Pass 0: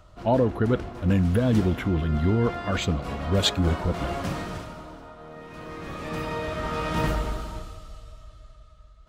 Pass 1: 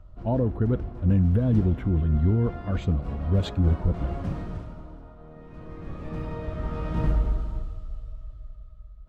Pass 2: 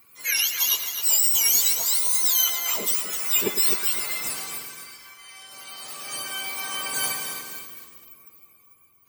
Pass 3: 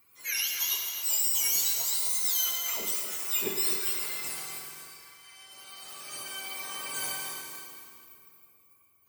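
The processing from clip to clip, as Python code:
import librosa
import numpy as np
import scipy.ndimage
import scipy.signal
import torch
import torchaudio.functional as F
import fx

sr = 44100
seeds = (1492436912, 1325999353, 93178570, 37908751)

y1 = fx.tilt_eq(x, sr, slope=-3.5)
y1 = y1 * 10.0 ** (-9.0 / 20.0)
y2 = fx.octave_mirror(y1, sr, pivot_hz=1200.0)
y2 = y2 + 10.0 ** (-11.0 / 20.0) * np.pad(y2, (int(106 * sr / 1000.0), 0))[:len(y2)]
y2 = fx.echo_crushed(y2, sr, ms=258, feedback_pct=35, bits=8, wet_db=-8.0)
y2 = y2 * 10.0 ** (7.5 / 20.0)
y3 = fx.rev_plate(y2, sr, seeds[0], rt60_s=1.8, hf_ratio=0.9, predelay_ms=0, drr_db=2.5)
y3 = y3 * 10.0 ** (-8.5 / 20.0)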